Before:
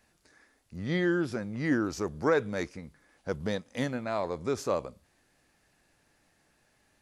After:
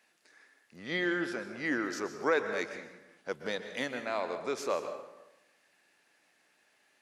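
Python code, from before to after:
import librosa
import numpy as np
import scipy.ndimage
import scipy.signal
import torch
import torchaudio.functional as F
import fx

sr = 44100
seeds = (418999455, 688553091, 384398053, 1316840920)

y = scipy.signal.sosfilt(scipy.signal.butter(2, 310.0, 'highpass', fs=sr, output='sos'), x)
y = fx.peak_eq(y, sr, hz=2500.0, db=6.5, octaves=1.5)
y = fx.rev_plate(y, sr, seeds[0], rt60_s=0.95, hf_ratio=0.65, predelay_ms=110, drr_db=8.0)
y = y * 10.0 ** (-3.0 / 20.0)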